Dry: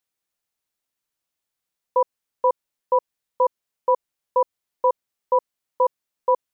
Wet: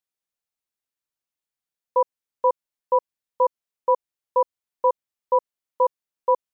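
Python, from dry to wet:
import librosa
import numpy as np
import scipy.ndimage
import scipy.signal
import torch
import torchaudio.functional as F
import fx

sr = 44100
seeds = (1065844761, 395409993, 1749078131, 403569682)

y = fx.upward_expand(x, sr, threshold_db=-31.0, expansion=1.5)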